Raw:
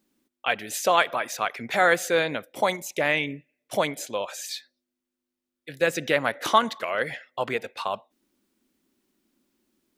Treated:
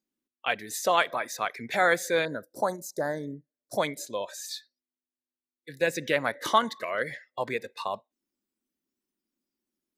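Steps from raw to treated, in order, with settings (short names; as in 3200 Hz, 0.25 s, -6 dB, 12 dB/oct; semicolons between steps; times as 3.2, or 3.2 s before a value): spectral noise reduction 13 dB; 2.25–3.78 Chebyshev band-stop 1600–4400 Hz, order 3; gain -3 dB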